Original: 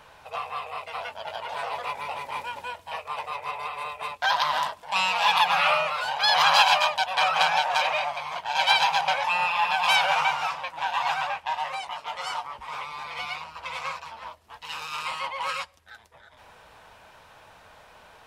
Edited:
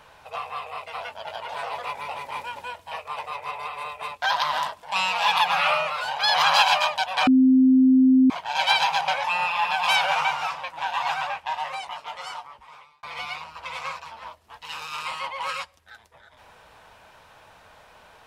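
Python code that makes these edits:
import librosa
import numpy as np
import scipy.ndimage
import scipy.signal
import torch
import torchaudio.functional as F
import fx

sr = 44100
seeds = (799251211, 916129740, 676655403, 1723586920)

y = fx.edit(x, sr, fx.bleep(start_s=7.27, length_s=1.03, hz=260.0, db=-12.5),
    fx.fade_out_span(start_s=11.88, length_s=1.15), tone=tone)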